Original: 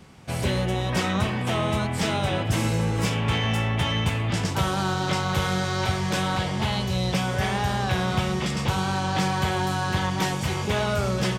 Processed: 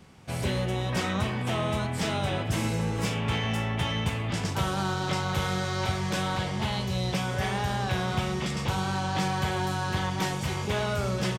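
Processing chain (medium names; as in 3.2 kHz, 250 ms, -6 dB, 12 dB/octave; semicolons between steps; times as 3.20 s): doubling 41 ms -13.5 dB; trim -4 dB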